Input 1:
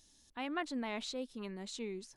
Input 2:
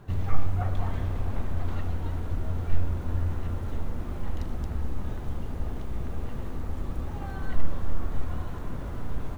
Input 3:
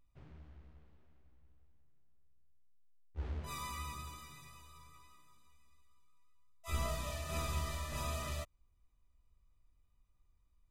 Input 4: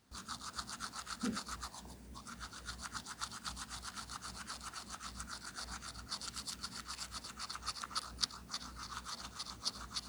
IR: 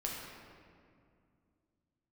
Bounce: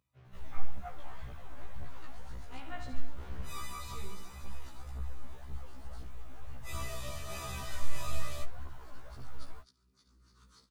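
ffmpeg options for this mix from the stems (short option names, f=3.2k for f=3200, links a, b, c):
-filter_complex "[0:a]adelay=2150,volume=-6dB,asplit=3[a][b][c];[a]atrim=end=2.95,asetpts=PTS-STARTPTS,afade=t=out:st=2.946:d=0.004:c=hsin[d];[b]atrim=start=2.95:end=3.81,asetpts=PTS-STARTPTS,volume=0[e];[c]atrim=start=3.81,asetpts=PTS-STARTPTS,afade=t=in:d=0.004:c=hsin[f];[d][e][f]concat=n=3:v=0:a=1,asplit=2[g][h];[h]volume=-6.5dB[i];[1:a]aphaser=in_gain=1:out_gain=1:delay=3.8:decay=0.69:speed=1.9:type=triangular,lowshelf=f=410:g=-8.5,adelay=250,volume=-9dB[j];[2:a]highpass=f=85:w=0.5412,highpass=f=85:w=1.3066,volume=2.5dB[k];[3:a]lowshelf=f=530:t=q:w=3:g=9,aeval=exprs='val(0)*pow(10,-18*if(lt(mod(-0.87*n/s,1),2*abs(-0.87)/1000),1-mod(-0.87*n/s,1)/(2*abs(-0.87)/1000),(mod(-0.87*n/s,1)-2*abs(-0.87)/1000)/(1-2*abs(-0.87)/1000))/20)':c=same,adelay=1450,volume=-13.5dB,asplit=2[l][m];[m]volume=-17.5dB[n];[i][n]amix=inputs=2:normalize=0,aecho=0:1:70|140|210|280|350|420|490|560|630:1|0.59|0.348|0.205|0.121|0.0715|0.0422|0.0249|0.0147[o];[g][j][k][l][o]amix=inputs=5:normalize=0,equalizer=f=320:w=1.3:g=-5.5,afftfilt=real='re*1.73*eq(mod(b,3),0)':imag='im*1.73*eq(mod(b,3),0)':win_size=2048:overlap=0.75"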